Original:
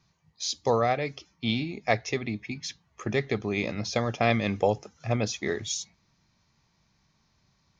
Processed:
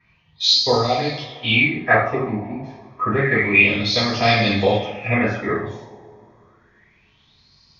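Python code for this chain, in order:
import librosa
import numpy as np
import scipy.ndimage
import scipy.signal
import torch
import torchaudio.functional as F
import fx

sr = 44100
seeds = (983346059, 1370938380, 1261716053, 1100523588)

y = fx.env_flanger(x, sr, rest_ms=4.3, full_db=-20.0, at=(0.75, 1.52))
y = fx.rev_double_slope(y, sr, seeds[0], early_s=0.6, late_s=2.4, knee_db=-17, drr_db=-9.5)
y = fx.filter_lfo_lowpass(y, sr, shape='sine', hz=0.29, low_hz=900.0, high_hz=4700.0, q=7.1)
y = F.gain(torch.from_numpy(y), -2.5).numpy()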